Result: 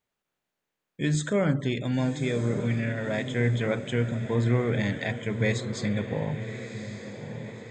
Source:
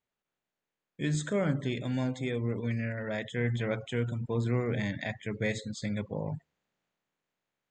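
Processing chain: diffused feedback echo 1.163 s, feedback 53%, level -10 dB; gain +4.5 dB

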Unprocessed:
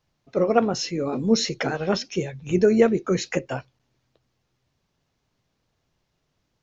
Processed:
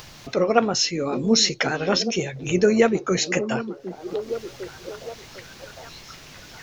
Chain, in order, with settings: tilt shelf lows -4.5 dB, about 1200 Hz; upward compressor, threshold -26 dBFS; delay with a stepping band-pass 0.755 s, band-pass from 270 Hz, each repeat 0.7 oct, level -7.5 dB; gain +3.5 dB

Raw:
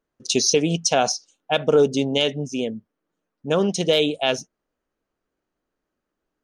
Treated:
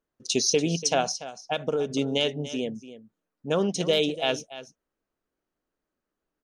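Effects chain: 1–1.9 compressor, threshold -19 dBFS, peak gain reduction 7.5 dB; on a send: echo 0.289 s -14.5 dB; on the sum: gain -4.5 dB

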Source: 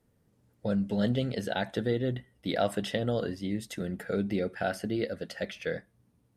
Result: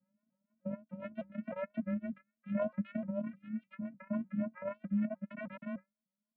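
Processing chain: reverb removal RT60 1.6 s; flange 0.59 Hz, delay 5.2 ms, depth 6.9 ms, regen +40%; 0.74–1.29 power-law curve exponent 1.4; 5.3–5.76 Schmitt trigger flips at -49.5 dBFS; vocoder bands 8, saw 390 Hz; harmonic tremolo 7.1 Hz, depth 70%, crossover 540 Hz; mistuned SSB -180 Hz 250–2600 Hz; shaped vibrato saw up 3.3 Hz, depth 160 cents; gain +3.5 dB

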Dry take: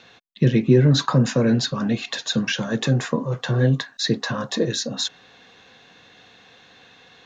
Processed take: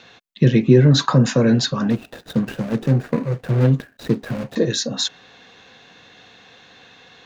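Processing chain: 1.9–4.56 median filter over 41 samples; gain +3 dB

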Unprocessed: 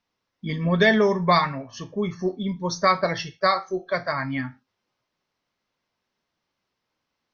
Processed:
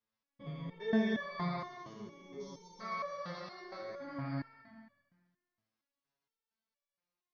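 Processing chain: stepped spectrum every 0.4 s; multi-head echo 73 ms, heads first and third, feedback 43%, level -8.5 dB; stepped resonator 4.3 Hz 110–570 Hz; gain -2 dB

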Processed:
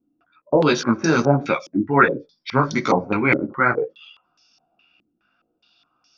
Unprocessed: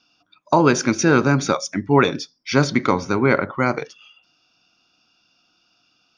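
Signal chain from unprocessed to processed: chorus voices 4, 1.3 Hz, delay 16 ms, depth 3 ms; stepped low-pass 4.8 Hz 320–5800 Hz

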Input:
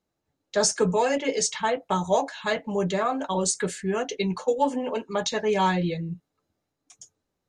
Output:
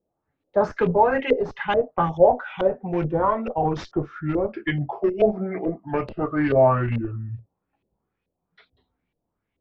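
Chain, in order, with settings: speed glide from 101% -> 55%; in parallel at -10 dB: Schmitt trigger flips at -20.5 dBFS; on the sum: LPF 5200 Hz 12 dB/oct; LFO low-pass saw up 2.3 Hz 470–3000 Hz

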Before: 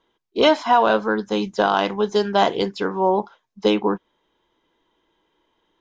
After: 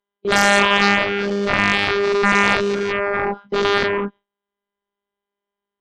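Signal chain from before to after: spectral dilation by 0.24 s; LPF 2500 Hz 12 dB/oct; robotiser 201 Hz; gate with hold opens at -25 dBFS; added harmonics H 7 -7 dB, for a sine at 2.5 dBFS; gain -4.5 dB

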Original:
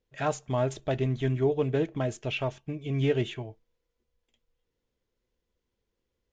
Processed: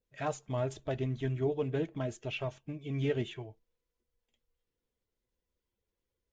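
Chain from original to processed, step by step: bin magnitudes rounded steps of 15 dB; gain -5.5 dB

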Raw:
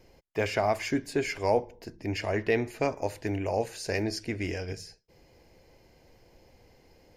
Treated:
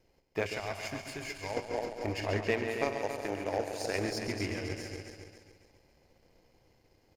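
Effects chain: regenerating reverse delay 0.138 s, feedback 65%, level -8 dB; 2.51–3.96 low shelf 200 Hz -10 dB; in parallel at +3 dB: compressor, threshold -36 dBFS, peak gain reduction 16 dB; 0.54–1.57 on the sum: bell 430 Hz -10 dB 2.5 oct; feedback echo 0.138 s, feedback 46%, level -7.5 dB; power-law curve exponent 1.4; gain -3 dB

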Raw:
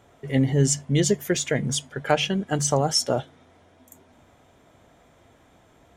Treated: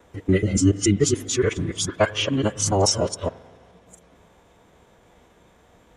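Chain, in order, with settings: local time reversal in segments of 0.143 s; spring tank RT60 1.9 s, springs 43 ms, chirp 55 ms, DRR 18 dB; formant-preserving pitch shift -6 st; gain +2.5 dB

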